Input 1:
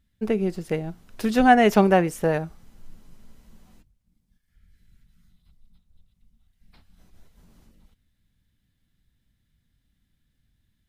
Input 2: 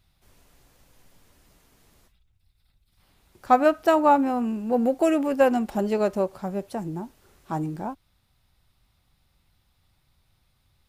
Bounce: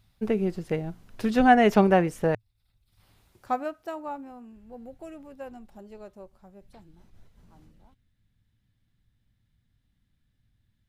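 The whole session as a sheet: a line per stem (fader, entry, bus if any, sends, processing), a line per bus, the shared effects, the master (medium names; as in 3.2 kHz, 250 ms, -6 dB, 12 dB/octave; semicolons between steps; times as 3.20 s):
-2.0 dB, 0.00 s, muted 2.35–3.99 s, no send, treble shelf 5.7 kHz -8 dB
3.18 s -0.5 dB -> 3.70 s -11.5 dB -> 6.82 s -11.5 dB -> 7.04 s -21.5 dB, 0.00 s, no send, auto duck -10 dB, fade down 1.25 s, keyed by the first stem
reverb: none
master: peaking EQ 110 Hz +8 dB 0.31 oct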